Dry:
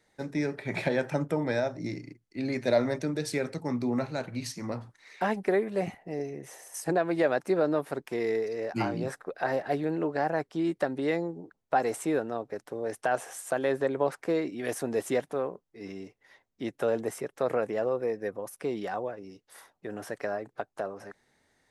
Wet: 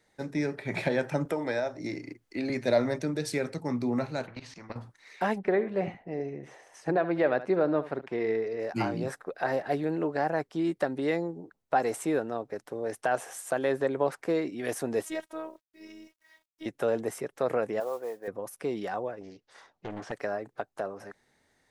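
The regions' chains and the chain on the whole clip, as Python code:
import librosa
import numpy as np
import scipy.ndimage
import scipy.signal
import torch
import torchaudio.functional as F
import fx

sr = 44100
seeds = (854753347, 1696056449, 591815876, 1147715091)

y = fx.chain(x, sr, fx.peak_eq(hz=150.0, db=-10.5, octaves=1.3),
    fx.band_squash(depth_pct=70), at=(1.25, 2.5))
y = fx.chain(y, sr, fx.level_steps(step_db=16),
    fx.spacing_loss(db_at_10k=28),
    fx.spectral_comp(ratio=2.0), at=(4.27, 4.76))
y = fx.chain(y, sr, fx.lowpass(hz=3200.0, slope=12),
    fx.echo_single(ms=71, db=-14.5), at=(5.38, 8.6))
y = fx.chain(y, sr, fx.low_shelf(hz=380.0, db=-10.0),
    fx.robotise(hz=318.0),
    fx.quant_dither(seeds[0], bits=12, dither='none'), at=(15.05, 16.66))
y = fx.chain(y, sr, fx.bandpass_q(hz=900.0, q=1.2),
    fx.mod_noise(seeds[1], snr_db=24), at=(17.8, 18.28))
y = fx.chain(y, sr, fx.lowpass(hz=6400.0, slope=24),
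    fx.doppler_dist(depth_ms=0.79), at=(19.21, 20.12))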